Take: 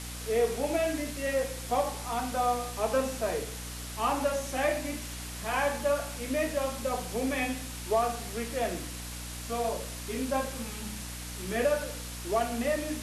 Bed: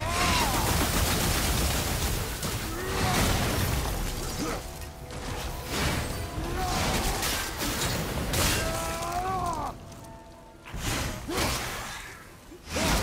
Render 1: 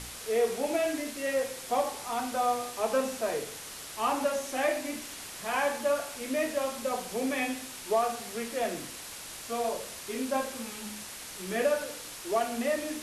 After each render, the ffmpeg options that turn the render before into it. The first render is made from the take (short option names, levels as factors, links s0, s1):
-af "bandreject=f=60:t=h:w=4,bandreject=f=120:t=h:w=4,bandreject=f=180:t=h:w=4,bandreject=f=240:t=h:w=4,bandreject=f=300:t=h:w=4"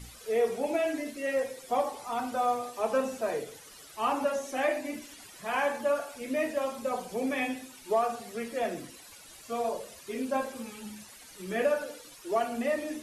-af "afftdn=nr=13:nf=-43"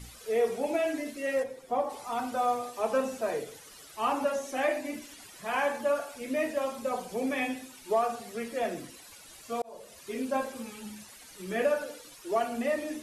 -filter_complex "[0:a]asplit=3[s0][s1][s2];[s0]afade=t=out:st=1.42:d=0.02[s3];[s1]highshelf=f=2100:g=-11.5,afade=t=in:st=1.42:d=0.02,afade=t=out:st=1.89:d=0.02[s4];[s2]afade=t=in:st=1.89:d=0.02[s5];[s3][s4][s5]amix=inputs=3:normalize=0,asplit=2[s6][s7];[s6]atrim=end=9.62,asetpts=PTS-STARTPTS,afade=t=out:st=9.616:d=0.004:c=hsin[s8];[s7]atrim=start=9.62,asetpts=PTS-STARTPTS,afade=t=in:d=0.43[s9];[s8][s9]concat=n=2:v=0:a=1"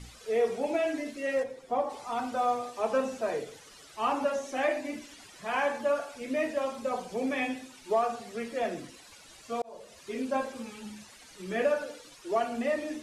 -af "lowpass=7700"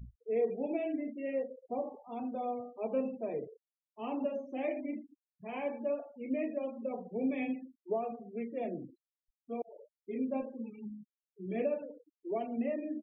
-af "afftfilt=real='re*gte(hypot(re,im),0.0158)':imag='im*gte(hypot(re,im),0.0158)':win_size=1024:overlap=0.75,firequalizer=gain_entry='entry(280,0);entry(1500,-26);entry(2200,-7);entry(5100,-28)':delay=0.05:min_phase=1"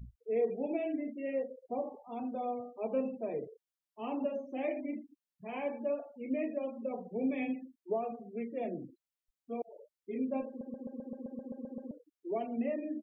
-filter_complex "[0:a]asplit=12[s0][s1][s2][s3][s4][s5][s6][s7][s8][s9][s10][s11];[s0]atrim=end=10.612[s12];[s1]atrim=start=10.478:end=10.612[s13];[s2]atrim=start=10.478:end=10.612[s14];[s3]atrim=start=10.478:end=10.612[s15];[s4]atrim=start=10.478:end=10.612[s16];[s5]atrim=start=10.478:end=10.612[s17];[s6]atrim=start=10.478:end=10.612[s18];[s7]atrim=start=10.478:end=10.612[s19];[s8]atrim=start=10.478:end=10.612[s20];[s9]atrim=start=10.478:end=10.612[s21];[s10]atrim=start=10.478:end=10.612[s22];[s11]atrim=start=11.908[s23];[s12][s13]acrossfade=d=0.004:c1=hsin:c2=hsin[s24];[s24][s14]acrossfade=d=0.004:c1=hsin:c2=hsin[s25];[s25][s15]acrossfade=d=0.004:c1=hsin:c2=hsin[s26];[s26][s16]acrossfade=d=0.004:c1=hsin:c2=hsin[s27];[s27][s17]acrossfade=d=0.004:c1=hsin:c2=hsin[s28];[s28][s18]acrossfade=d=0.004:c1=hsin:c2=hsin[s29];[s29][s19]acrossfade=d=0.004:c1=hsin:c2=hsin[s30];[s30][s20]acrossfade=d=0.004:c1=hsin:c2=hsin[s31];[s31][s21]acrossfade=d=0.004:c1=hsin:c2=hsin[s32];[s32][s22]acrossfade=d=0.004:c1=hsin:c2=hsin[s33];[s33][s23]acrossfade=d=0.004:c1=hsin:c2=hsin"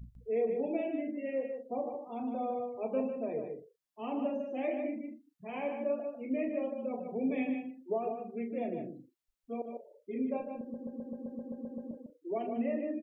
-filter_complex "[0:a]asplit=2[s0][s1];[s1]adelay=39,volume=0.237[s2];[s0][s2]amix=inputs=2:normalize=0,asplit=2[s3][s4];[s4]adelay=151.6,volume=0.501,highshelf=f=4000:g=-3.41[s5];[s3][s5]amix=inputs=2:normalize=0"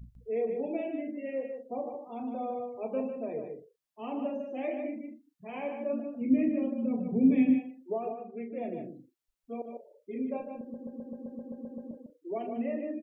-filter_complex "[0:a]asplit=3[s0][s1][s2];[s0]afade=t=out:st=5.92:d=0.02[s3];[s1]asubboost=boost=9:cutoff=220,afade=t=in:st=5.92:d=0.02,afade=t=out:st=7.58:d=0.02[s4];[s2]afade=t=in:st=7.58:d=0.02[s5];[s3][s4][s5]amix=inputs=3:normalize=0,asettb=1/sr,asplit=3[s6][s7][s8];[s6]atrim=end=8.134[s9];[s7]atrim=start=8.13:end=8.64,asetpts=PTS-STARTPTS,afade=t=in:d=0.004:c=qsin,afade=t=out:st=0.506:d=0.004:c=qsin,bass=f=250:g=-4,treble=f=4000:g=-13[s10];[s8]atrim=start=8.636[s11];[s9][s10]acrossfade=d=0.004:c1=hsin:c2=qsin[s12];[s12][s11]acrossfade=d=0.004:c1=qsin:c2=hsin"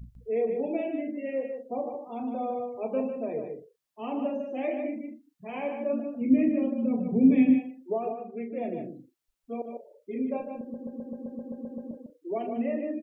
-af "volume=1.5"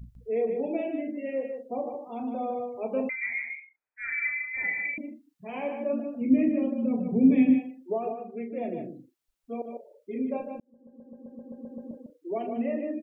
-filter_complex "[0:a]asettb=1/sr,asplit=3[s0][s1][s2];[s0]atrim=end=3.094[s3];[s1]atrim=start=3.09:end=4.98,asetpts=PTS-STARTPTS,afade=t=in:d=0.004:c=qsin,afade=t=out:st=1.886:d=0.004:c=qsin,lowpass=f=2200:t=q:w=0.5098,lowpass=f=2200:t=q:w=0.6013,lowpass=f=2200:t=q:w=0.9,lowpass=f=2200:t=q:w=2.563,afreqshift=-2600[s4];[s2]atrim=start=4.976[s5];[s3][s4]acrossfade=d=0.004:c1=hsin:c2=qsin[s6];[s6][s5]acrossfade=d=0.004:c1=qsin:c2=hsin,asplit=2[s7][s8];[s7]atrim=end=10.6,asetpts=PTS-STARTPTS,afade=t=out:st=10.596:d=0.004:c=hsin[s9];[s8]atrim=start=10.6,asetpts=PTS-STARTPTS,afade=t=in:d=1.53[s10];[s9][s10]concat=n=2:v=0:a=1"